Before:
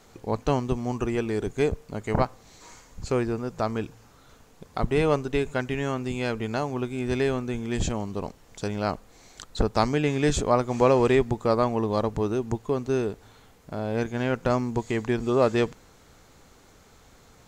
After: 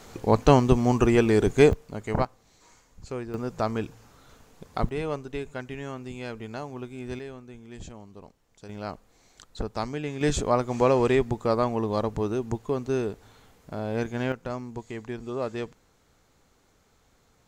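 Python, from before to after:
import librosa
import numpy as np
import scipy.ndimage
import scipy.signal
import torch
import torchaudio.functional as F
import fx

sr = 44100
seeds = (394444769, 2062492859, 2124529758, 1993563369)

y = fx.gain(x, sr, db=fx.steps((0.0, 7.0), (1.73, -2.0), (2.25, -9.0), (3.34, 0.0), (4.89, -8.0), (7.19, -15.0), (8.69, -8.0), (10.21, -1.5), (14.32, -9.5)))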